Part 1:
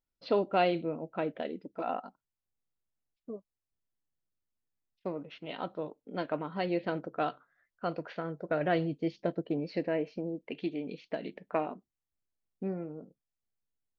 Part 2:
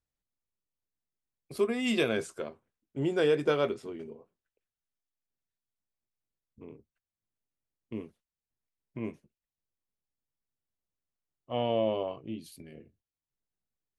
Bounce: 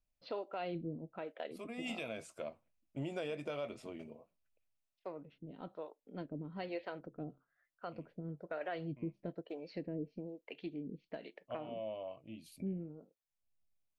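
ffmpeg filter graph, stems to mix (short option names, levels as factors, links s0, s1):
-filter_complex "[0:a]lowshelf=f=110:g=12,acrossover=split=410[s0][s1];[s0]aeval=exprs='val(0)*(1-1/2+1/2*cos(2*PI*1.1*n/s))':c=same[s2];[s1]aeval=exprs='val(0)*(1-1/2-1/2*cos(2*PI*1.1*n/s))':c=same[s3];[s2][s3]amix=inputs=2:normalize=0,volume=0.596,asplit=2[s4][s5];[1:a]equalizer=f=400:t=o:w=0.33:g=-10,equalizer=f=630:t=o:w=0.33:g=10,equalizer=f=1600:t=o:w=0.33:g=-5,equalizer=f=2500:t=o:w=0.33:g=7,volume=0.631[s6];[s5]apad=whole_len=616745[s7];[s6][s7]sidechaincompress=threshold=0.00398:ratio=12:attack=6.9:release=1000[s8];[s4][s8]amix=inputs=2:normalize=0,alimiter=level_in=2.11:limit=0.0631:level=0:latency=1:release=157,volume=0.473"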